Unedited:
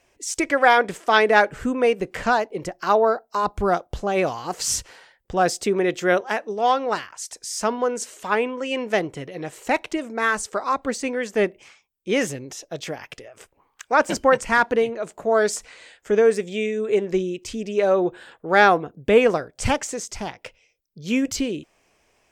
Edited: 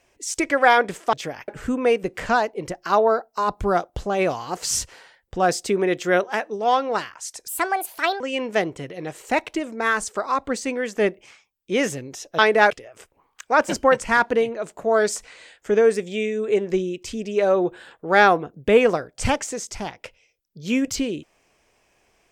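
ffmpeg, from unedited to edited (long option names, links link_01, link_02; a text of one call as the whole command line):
ffmpeg -i in.wav -filter_complex "[0:a]asplit=7[link_01][link_02][link_03][link_04][link_05][link_06][link_07];[link_01]atrim=end=1.132[link_08];[link_02]atrim=start=12.758:end=13.112[link_09];[link_03]atrim=start=1.448:end=7.454[link_10];[link_04]atrim=start=7.45:end=8.58,asetpts=PTS-STARTPTS,asetrate=68796,aresample=44100,atrim=end_sample=31944,asetpts=PTS-STARTPTS[link_11];[link_05]atrim=start=8.576:end=12.762[link_12];[link_06]atrim=start=1.128:end=1.452[link_13];[link_07]atrim=start=13.108[link_14];[link_08][link_09]acrossfade=duration=0.004:curve1=hsin:curve2=hsin[link_15];[link_15][link_10]acrossfade=duration=0.004:curve1=hsin:curve2=hsin[link_16];[link_16][link_11]acrossfade=duration=0.004:curve1=hsin:curve2=hsin[link_17];[link_17][link_12]acrossfade=duration=0.004:curve1=hsin:curve2=hsin[link_18];[link_18][link_13]acrossfade=duration=0.004:curve1=hsin:curve2=hsin[link_19];[link_19][link_14]acrossfade=duration=0.004:curve1=hsin:curve2=hsin" out.wav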